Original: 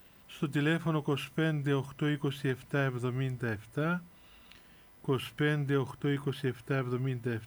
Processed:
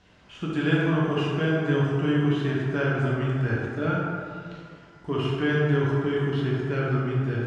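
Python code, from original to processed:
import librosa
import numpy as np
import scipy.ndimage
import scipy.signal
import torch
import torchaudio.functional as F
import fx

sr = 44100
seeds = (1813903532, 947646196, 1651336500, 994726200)

y = scipy.signal.sosfilt(scipy.signal.butter(4, 6600.0, 'lowpass', fs=sr, output='sos'), x)
y = fx.rev_plate(y, sr, seeds[0], rt60_s=2.2, hf_ratio=0.45, predelay_ms=0, drr_db=-5.5)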